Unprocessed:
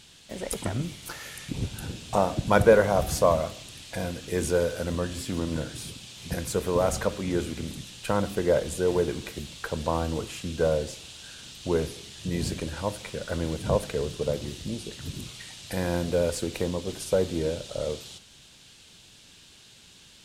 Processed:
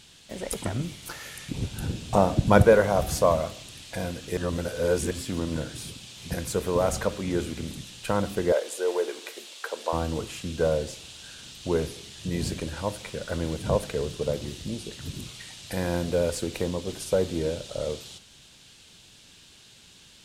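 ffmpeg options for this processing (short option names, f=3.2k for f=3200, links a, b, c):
-filter_complex "[0:a]asettb=1/sr,asplit=3[a][b][c];[a]atrim=end=1.764[d];[b]atrim=start=1.76:end=2.63,asetpts=PTS-STARTPTS,afade=t=in:d=0.004:c=qsin,afade=t=out:st=0.866:d=0.004:c=qsin,lowshelf=f=460:g=6.5[e];[c]atrim=start=2.626[f];[d][e]acrossfade=d=0.004:c1=hsin:c2=qsin[g];[g][f]acrossfade=d=0.004:c1=qsin:c2=hsin,asettb=1/sr,asplit=3[h][i][j];[h]atrim=end=8.524[k];[i]atrim=start=8.52:end=9.93,asetpts=PTS-STARTPTS,afade=t=in:d=0.004:c=qsin,afade=t=out:st=1.406:d=0.004:c=qsin,highpass=f=390:w=0.5412,highpass=f=390:w=1.3066[l];[j]atrim=start=9.926[m];[k][l]acrossfade=d=0.004:c1=hsin:c2=qsin[n];[n][m]acrossfade=d=0.004:c1=qsin:c2=hsin,asplit=3[o][p][q];[o]atrim=end=4.372[r];[p]atrim=start=4.368:end=5.112,asetpts=PTS-STARTPTS,areverse[s];[q]atrim=start=5.108[t];[r][s]acrossfade=d=0.004:c1=hsin:c2=hsin[u];[u][t]acrossfade=d=0.004:c1=hsin:c2=hsin"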